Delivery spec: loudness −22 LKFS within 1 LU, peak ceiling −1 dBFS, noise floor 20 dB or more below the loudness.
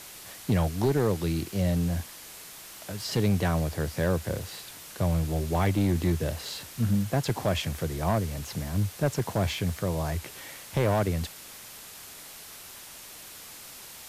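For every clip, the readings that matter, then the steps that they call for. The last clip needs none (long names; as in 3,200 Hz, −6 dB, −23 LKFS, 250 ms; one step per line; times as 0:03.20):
share of clipped samples 0.7%; peaks flattened at −17.5 dBFS; background noise floor −45 dBFS; target noise floor −49 dBFS; integrated loudness −28.5 LKFS; sample peak −17.5 dBFS; target loudness −22.0 LKFS
→ clipped peaks rebuilt −17.5 dBFS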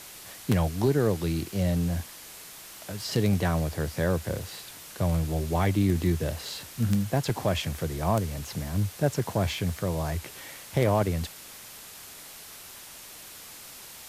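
share of clipped samples 0.0%; background noise floor −45 dBFS; target noise floor −48 dBFS
→ broadband denoise 6 dB, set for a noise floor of −45 dBFS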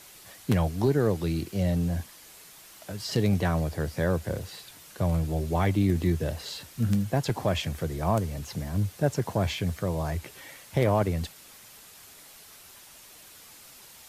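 background noise floor −51 dBFS; integrated loudness −28.0 LKFS; sample peak −9.5 dBFS; target loudness −22.0 LKFS
→ level +6 dB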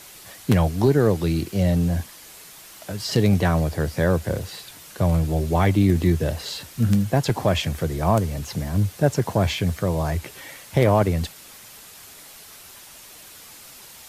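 integrated loudness −22.0 LKFS; sample peak −3.5 dBFS; background noise floor −45 dBFS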